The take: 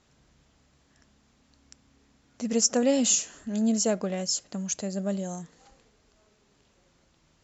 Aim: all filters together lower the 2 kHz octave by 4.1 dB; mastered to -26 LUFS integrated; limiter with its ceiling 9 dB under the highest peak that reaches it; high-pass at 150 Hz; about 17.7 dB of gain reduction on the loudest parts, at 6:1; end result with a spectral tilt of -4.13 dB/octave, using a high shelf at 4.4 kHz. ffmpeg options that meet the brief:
-af "highpass=150,equalizer=f=2000:t=o:g=-7.5,highshelf=f=4400:g=8,acompressor=threshold=0.0224:ratio=6,volume=4.47,alimiter=limit=0.141:level=0:latency=1"

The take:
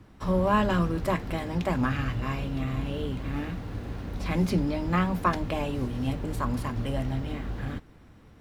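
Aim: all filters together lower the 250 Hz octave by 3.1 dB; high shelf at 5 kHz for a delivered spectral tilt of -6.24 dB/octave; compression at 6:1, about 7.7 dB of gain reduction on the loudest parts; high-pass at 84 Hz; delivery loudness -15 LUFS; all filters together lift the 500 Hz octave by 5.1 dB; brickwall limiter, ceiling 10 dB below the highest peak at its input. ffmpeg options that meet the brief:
-af "highpass=84,equalizer=f=250:t=o:g=-6.5,equalizer=f=500:t=o:g=8,highshelf=f=5000:g=-4.5,acompressor=threshold=0.0501:ratio=6,volume=8.91,alimiter=limit=0.631:level=0:latency=1"

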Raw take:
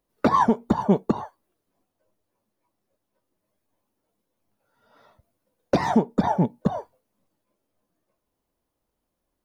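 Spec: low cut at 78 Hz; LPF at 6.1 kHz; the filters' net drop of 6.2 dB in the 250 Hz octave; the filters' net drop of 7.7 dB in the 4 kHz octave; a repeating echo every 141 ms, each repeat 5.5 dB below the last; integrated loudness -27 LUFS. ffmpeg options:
-af "highpass=78,lowpass=6100,equalizer=f=250:t=o:g=-8,equalizer=f=4000:t=o:g=-8.5,aecho=1:1:141|282|423|564|705|846|987:0.531|0.281|0.149|0.079|0.0419|0.0222|0.0118,volume=0.794"

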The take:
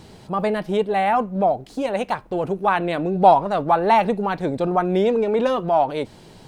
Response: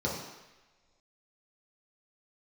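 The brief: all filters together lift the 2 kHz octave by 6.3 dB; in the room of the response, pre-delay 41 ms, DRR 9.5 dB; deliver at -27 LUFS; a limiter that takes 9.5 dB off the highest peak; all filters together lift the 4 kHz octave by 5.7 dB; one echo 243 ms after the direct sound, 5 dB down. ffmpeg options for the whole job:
-filter_complex "[0:a]equalizer=f=2000:t=o:g=7,equalizer=f=4000:t=o:g=4.5,alimiter=limit=0.282:level=0:latency=1,aecho=1:1:243:0.562,asplit=2[s0][s1];[1:a]atrim=start_sample=2205,adelay=41[s2];[s1][s2]afir=irnorm=-1:irlink=0,volume=0.133[s3];[s0][s3]amix=inputs=2:normalize=0,volume=0.422"

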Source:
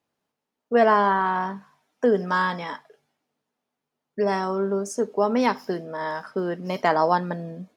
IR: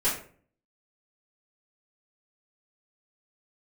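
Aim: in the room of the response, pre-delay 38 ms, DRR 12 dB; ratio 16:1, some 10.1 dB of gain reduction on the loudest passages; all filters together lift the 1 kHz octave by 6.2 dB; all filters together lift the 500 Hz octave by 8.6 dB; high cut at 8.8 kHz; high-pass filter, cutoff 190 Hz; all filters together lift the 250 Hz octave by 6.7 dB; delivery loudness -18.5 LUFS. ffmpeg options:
-filter_complex "[0:a]highpass=190,lowpass=8800,equalizer=f=250:t=o:g=8,equalizer=f=500:t=o:g=7.5,equalizer=f=1000:t=o:g=4.5,acompressor=threshold=0.178:ratio=16,asplit=2[s0][s1];[1:a]atrim=start_sample=2205,adelay=38[s2];[s1][s2]afir=irnorm=-1:irlink=0,volume=0.075[s3];[s0][s3]amix=inputs=2:normalize=0,volume=1.5"

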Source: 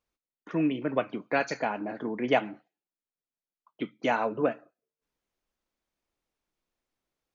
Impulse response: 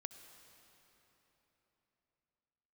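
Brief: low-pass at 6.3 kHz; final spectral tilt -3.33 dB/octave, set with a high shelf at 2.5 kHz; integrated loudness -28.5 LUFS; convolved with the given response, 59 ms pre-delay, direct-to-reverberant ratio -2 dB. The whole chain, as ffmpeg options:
-filter_complex "[0:a]lowpass=6300,highshelf=f=2500:g=6.5,asplit=2[s0][s1];[1:a]atrim=start_sample=2205,adelay=59[s2];[s1][s2]afir=irnorm=-1:irlink=0,volume=2[s3];[s0][s3]amix=inputs=2:normalize=0,volume=0.75"

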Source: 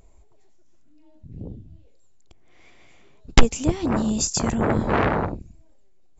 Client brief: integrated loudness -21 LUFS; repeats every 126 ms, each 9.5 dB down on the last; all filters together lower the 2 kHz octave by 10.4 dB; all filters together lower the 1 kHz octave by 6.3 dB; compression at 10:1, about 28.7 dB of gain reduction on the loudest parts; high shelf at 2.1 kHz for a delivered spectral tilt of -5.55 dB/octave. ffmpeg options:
-af "equalizer=f=1000:t=o:g=-5,equalizer=f=2000:t=o:g=-8,highshelf=f=2100:g=-6.5,acompressor=threshold=0.0158:ratio=10,aecho=1:1:126|252|378|504:0.335|0.111|0.0365|0.012,volume=11.2"

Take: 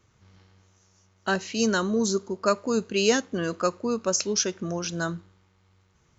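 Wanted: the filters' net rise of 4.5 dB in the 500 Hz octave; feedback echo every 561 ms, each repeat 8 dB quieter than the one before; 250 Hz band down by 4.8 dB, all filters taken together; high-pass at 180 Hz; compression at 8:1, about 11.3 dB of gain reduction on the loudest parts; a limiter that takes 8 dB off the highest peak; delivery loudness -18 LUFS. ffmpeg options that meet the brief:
-af "highpass=180,equalizer=f=250:t=o:g=-7,equalizer=f=500:t=o:g=7.5,acompressor=threshold=0.0631:ratio=8,alimiter=limit=0.106:level=0:latency=1,aecho=1:1:561|1122|1683|2244|2805:0.398|0.159|0.0637|0.0255|0.0102,volume=4.22"

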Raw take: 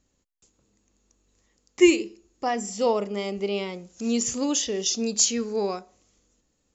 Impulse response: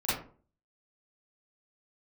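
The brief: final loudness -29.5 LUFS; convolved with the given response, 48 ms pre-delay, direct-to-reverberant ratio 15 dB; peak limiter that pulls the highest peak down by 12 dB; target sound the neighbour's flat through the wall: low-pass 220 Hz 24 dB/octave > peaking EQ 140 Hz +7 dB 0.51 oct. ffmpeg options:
-filter_complex "[0:a]alimiter=limit=0.126:level=0:latency=1,asplit=2[s0][s1];[1:a]atrim=start_sample=2205,adelay=48[s2];[s1][s2]afir=irnorm=-1:irlink=0,volume=0.0631[s3];[s0][s3]amix=inputs=2:normalize=0,lowpass=f=220:w=0.5412,lowpass=f=220:w=1.3066,equalizer=f=140:t=o:w=0.51:g=7,volume=2.37"

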